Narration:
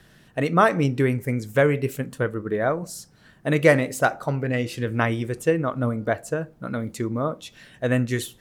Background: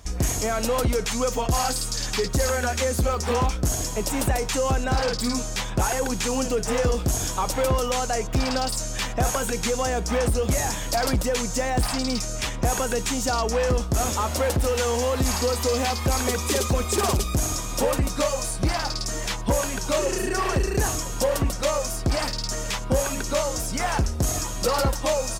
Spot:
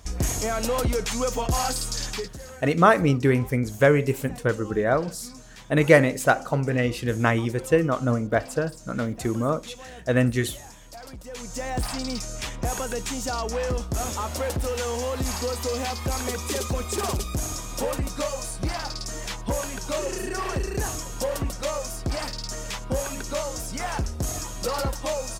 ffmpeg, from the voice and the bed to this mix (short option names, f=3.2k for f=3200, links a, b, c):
-filter_complex "[0:a]adelay=2250,volume=1dB[a];[1:a]volume=12.5dB,afade=t=out:st=2.01:d=0.36:silence=0.141254,afade=t=in:st=11.23:d=0.51:silence=0.199526[b];[a][b]amix=inputs=2:normalize=0"